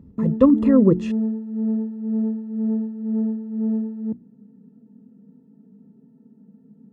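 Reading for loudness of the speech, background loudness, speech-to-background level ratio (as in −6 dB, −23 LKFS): −17.5 LKFS, −25.5 LKFS, 8.0 dB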